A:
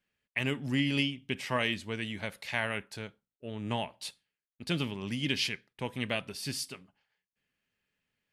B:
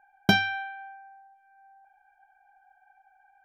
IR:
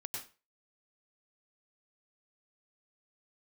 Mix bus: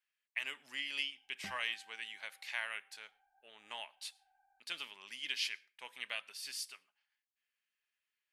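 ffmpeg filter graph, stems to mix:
-filter_complex "[0:a]highpass=1.2k,volume=-5.5dB,asplit=3[a][b][c];[b]volume=-22.5dB[d];[1:a]lowpass=1.4k,asoftclip=type=tanh:threshold=-24dB,adelay=1150,volume=-11.5dB[e];[c]apad=whole_len=202724[f];[e][f]sidechaincompress=threshold=-51dB:ratio=8:attack=16:release=225[g];[2:a]atrim=start_sample=2205[h];[d][h]afir=irnorm=-1:irlink=0[i];[a][g][i]amix=inputs=3:normalize=0"

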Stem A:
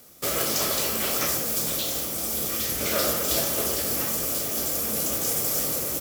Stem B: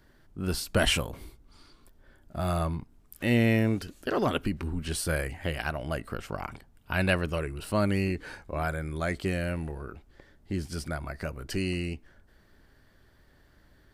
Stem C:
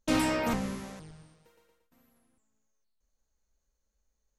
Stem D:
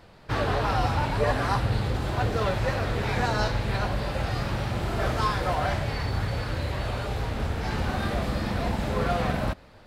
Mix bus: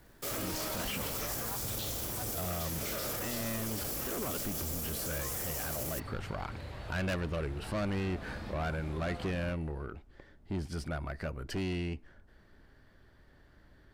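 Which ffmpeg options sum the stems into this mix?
-filter_complex "[0:a]aeval=exprs='sgn(val(0))*max(abs(val(0))-0.00335,0)':c=same,volume=-7.5dB[a];[1:a]highshelf=f=5.4k:g=-10,asoftclip=type=tanh:threshold=-30dB,volume=0dB,asplit=2[b][c];[2:a]adelay=300,volume=-8.5dB[d];[3:a]volume=-14dB[e];[c]apad=whole_len=435015[f];[e][f]sidechaincompress=threshold=-37dB:ratio=8:attack=16:release=390[g];[a][b][d][g]amix=inputs=4:normalize=0,alimiter=level_in=3dB:limit=-24dB:level=0:latency=1:release=15,volume=-3dB"

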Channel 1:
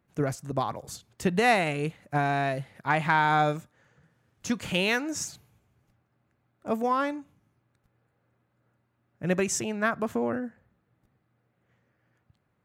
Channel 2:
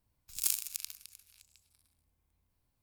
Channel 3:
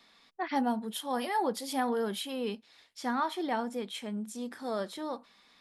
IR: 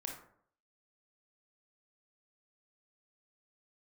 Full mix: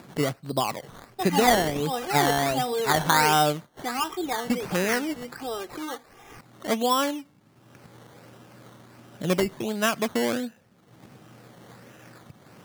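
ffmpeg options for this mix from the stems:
-filter_complex "[0:a]lowpass=2.1k,acontrast=33,highpass=150,volume=-2dB,asplit=2[a][b];[1:a]adelay=600,volume=-1.5dB[c];[2:a]aecho=1:1:2.5:0.8,adelay=800,volume=0.5dB[d];[b]apad=whole_len=150832[e];[c][e]sidechaingate=range=-33dB:threshold=-54dB:ratio=16:detection=peak[f];[a][f][d]amix=inputs=3:normalize=0,lowpass=f=5.5k:w=0.5412,lowpass=f=5.5k:w=1.3066,acompressor=mode=upward:threshold=-30dB:ratio=2.5,acrusher=samples=14:mix=1:aa=0.000001:lfo=1:lforange=8.4:lforate=1.4"

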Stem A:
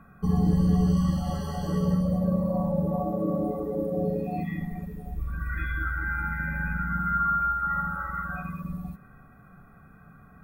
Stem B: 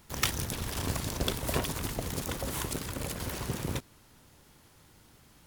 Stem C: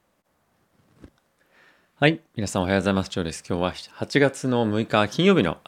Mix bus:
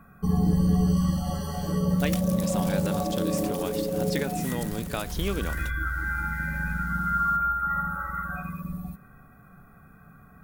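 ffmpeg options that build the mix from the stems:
-filter_complex "[0:a]volume=0dB[a];[1:a]acompressor=threshold=-48dB:ratio=2,adelay=1900,volume=0.5dB[b];[2:a]acrusher=bits=8:mix=0:aa=0.000001,acompressor=threshold=-27dB:ratio=2,volume=-5.5dB[c];[a][b][c]amix=inputs=3:normalize=0,highshelf=f=6.2k:g=9"

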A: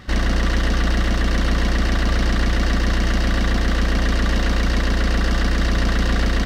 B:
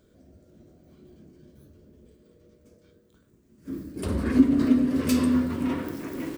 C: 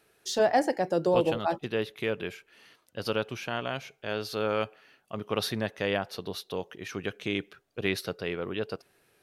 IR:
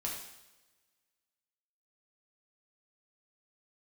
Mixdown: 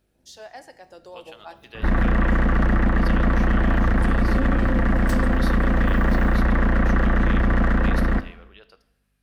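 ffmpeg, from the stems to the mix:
-filter_complex "[0:a]lowpass=f=1.8k:w=0.5412,lowpass=f=1.8k:w=1.3066,asoftclip=type=hard:threshold=-16.5dB,adelay=1750,volume=-5dB,asplit=2[a][b];[b]volume=-9.5dB[c];[1:a]tremolo=f=270:d=0.974,volume=-7.5dB[d];[2:a]highpass=f=1.5k:p=1,aeval=exprs='val(0)+0.001*(sin(2*PI*50*n/s)+sin(2*PI*2*50*n/s)/2+sin(2*PI*3*50*n/s)/3+sin(2*PI*4*50*n/s)/4+sin(2*PI*5*50*n/s)/5)':c=same,volume=-12.5dB,asplit=2[e][f];[f]volume=-11dB[g];[3:a]atrim=start_sample=2205[h];[c][g]amix=inputs=2:normalize=0[i];[i][h]afir=irnorm=-1:irlink=0[j];[a][d][e][j]amix=inputs=4:normalize=0,dynaudnorm=f=280:g=13:m=13.5dB,alimiter=limit=-13dB:level=0:latency=1:release=40"

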